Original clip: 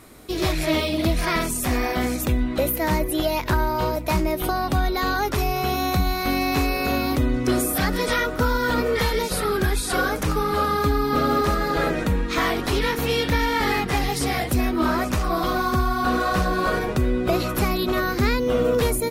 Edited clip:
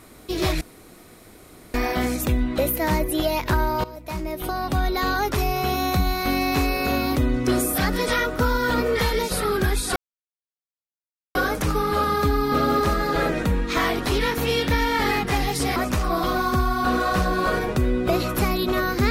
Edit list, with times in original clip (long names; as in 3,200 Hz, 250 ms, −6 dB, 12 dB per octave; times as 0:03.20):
0:00.61–0:01.74: fill with room tone
0:03.84–0:04.94: fade in, from −17 dB
0:09.96: splice in silence 1.39 s
0:14.37–0:14.96: remove